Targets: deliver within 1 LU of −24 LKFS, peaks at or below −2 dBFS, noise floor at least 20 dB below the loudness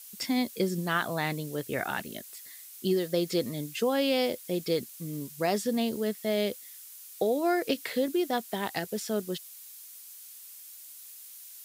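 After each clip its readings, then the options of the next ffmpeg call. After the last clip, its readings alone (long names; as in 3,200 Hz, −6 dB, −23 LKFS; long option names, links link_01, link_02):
background noise floor −48 dBFS; target noise floor −50 dBFS; integrated loudness −30.0 LKFS; sample peak −14.5 dBFS; target loudness −24.0 LKFS
→ -af "afftdn=noise_reduction=6:noise_floor=-48"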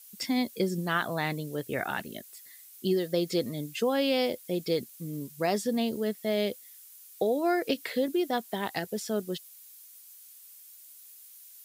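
background noise floor −52 dBFS; integrated loudness −30.5 LKFS; sample peak −15.0 dBFS; target loudness −24.0 LKFS
→ -af "volume=6.5dB"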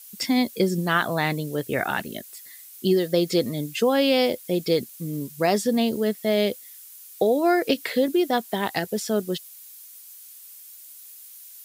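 integrated loudness −24.0 LKFS; sample peak −8.5 dBFS; background noise floor −45 dBFS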